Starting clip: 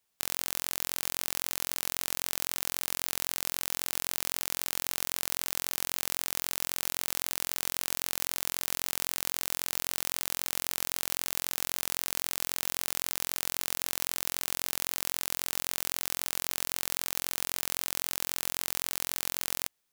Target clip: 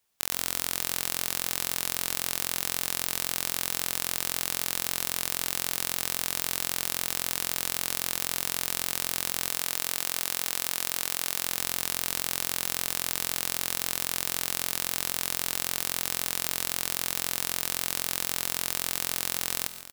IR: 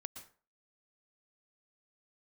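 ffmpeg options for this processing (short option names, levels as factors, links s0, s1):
-filter_complex "[0:a]asettb=1/sr,asplit=3[s0][s1][s2];[s0]atrim=end=9.494[s3];[s1]atrim=start=9.49:end=11.44,asetpts=PTS-STARTPTS,afade=t=in:d=0.004:c=qsin,afade=t=out:st=1.946:d=0.004:c=qsin,lowshelf=f=220:g=-7[s4];[s2]atrim=start=11.436[s5];[s3][s4]acrossfade=d=0.004:c1=hsin:c2=qsin[s6];[s6][s5]acrossfade=d=0.004:c1=qsin:c2=hsin,aecho=1:1:554:0.188,asplit=2[s7][s8];[1:a]atrim=start_sample=2205[s9];[s8][s9]afir=irnorm=-1:irlink=0,volume=1.58[s10];[s7][s10]amix=inputs=2:normalize=0,volume=0.708"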